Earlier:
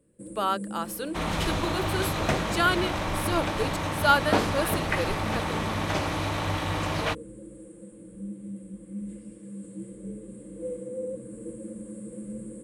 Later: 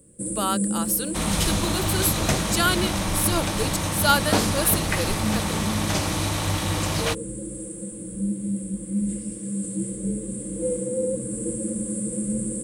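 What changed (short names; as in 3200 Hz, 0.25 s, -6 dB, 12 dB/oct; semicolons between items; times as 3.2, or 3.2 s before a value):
first sound +7.5 dB; master: add tone controls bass +5 dB, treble +14 dB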